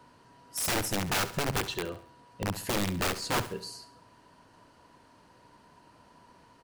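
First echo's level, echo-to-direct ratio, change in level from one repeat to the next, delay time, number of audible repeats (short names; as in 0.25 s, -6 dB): -13.5 dB, -12.5 dB, -7.5 dB, 68 ms, 3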